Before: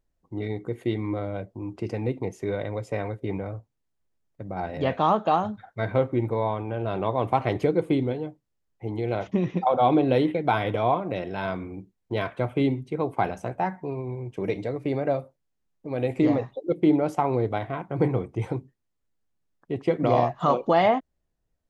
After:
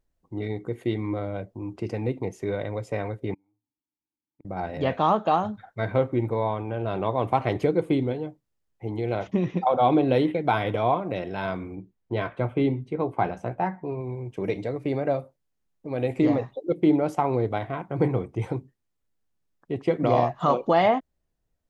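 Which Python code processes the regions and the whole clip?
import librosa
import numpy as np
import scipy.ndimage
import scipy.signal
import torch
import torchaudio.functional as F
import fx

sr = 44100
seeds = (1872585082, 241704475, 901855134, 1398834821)

y = fx.chain(x, sr, fx.vowel_filter(vowel='u'),
    fx.low_shelf(hz=140.0, db=12.0),
    fx.gate_flip(shuts_db=-40.0, range_db=-29), at=(3.34, 4.45))
y = fx.chain(y, sr, fx.lowpass(hz=2700.0, slope=6),
    fx.doubler(ms=17.0, db=-11.5), at=(11.75, 14.01))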